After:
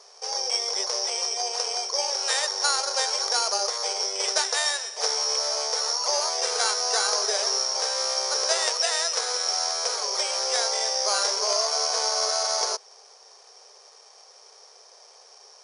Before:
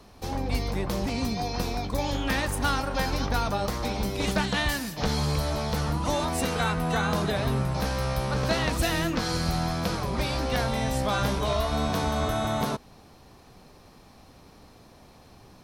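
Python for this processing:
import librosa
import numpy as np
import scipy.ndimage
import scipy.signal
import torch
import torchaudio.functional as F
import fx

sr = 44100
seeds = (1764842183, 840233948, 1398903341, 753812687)

y = (np.kron(scipy.signal.resample_poly(x, 1, 8), np.eye(8)[0]) * 8)[:len(x)]
y = fx.brickwall_bandpass(y, sr, low_hz=390.0, high_hz=9900.0)
y = fx.high_shelf(y, sr, hz=7800.0, db=-11.0)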